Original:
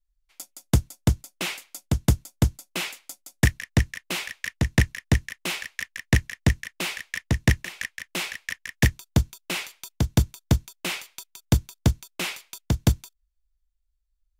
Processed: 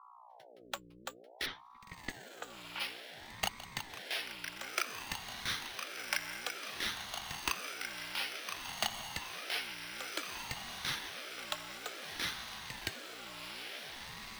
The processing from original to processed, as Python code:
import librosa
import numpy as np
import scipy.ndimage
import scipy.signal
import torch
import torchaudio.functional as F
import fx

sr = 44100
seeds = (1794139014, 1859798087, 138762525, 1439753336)

y = fx.bin_expand(x, sr, power=1.5)
y = scipy.signal.sosfilt(scipy.signal.butter(2, 3200.0, 'lowpass', fs=sr, output='sos'), y)
y = np.repeat(y[::6], 6)[:len(y)]
y = fx.env_lowpass(y, sr, base_hz=1400.0, full_db=-16.0, at=(1.45, 2.79), fade=0.02)
y = scipy.signal.sosfilt(scipy.signal.cheby1(6, 9, 810.0, 'highpass', fs=sr, output='sos'), y)
y = fx.echo_diffused(y, sr, ms=1477, feedback_pct=61, wet_db=-4.0)
y = fx.add_hum(y, sr, base_hz=60, snr_db=15)
y = fx.ring_lfo(y, sr, carrier_hz=650.0, swing_pct=65, hz=0.56)
y = y * 10.0 ** (4.5 / 20.0)